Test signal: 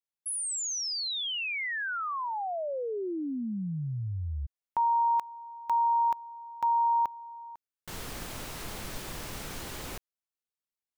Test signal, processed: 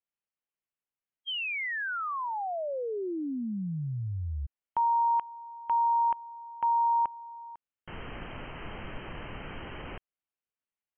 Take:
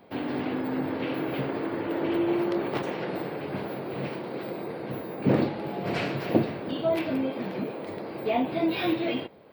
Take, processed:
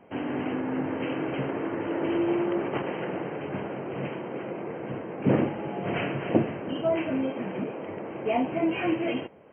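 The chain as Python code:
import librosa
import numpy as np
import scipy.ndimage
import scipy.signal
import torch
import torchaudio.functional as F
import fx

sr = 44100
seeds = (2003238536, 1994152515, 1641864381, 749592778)

y = fx.brickwall_lowpass(x, sr, high_hz=3200.0)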